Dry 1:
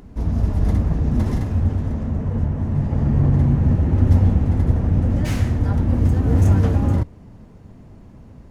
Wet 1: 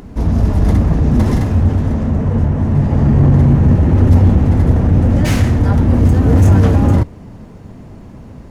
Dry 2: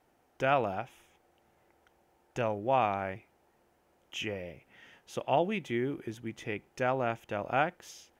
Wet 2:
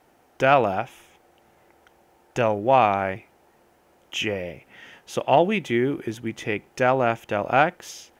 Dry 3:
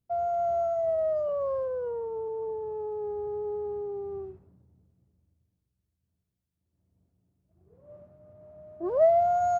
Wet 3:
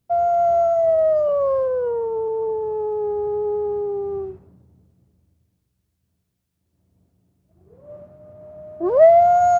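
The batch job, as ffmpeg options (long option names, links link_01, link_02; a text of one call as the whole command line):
ffmpeg -i in.wav -af "acontrast=88,lowshelf=frequency=110:gain=-4.5,volume=3dB" out.wav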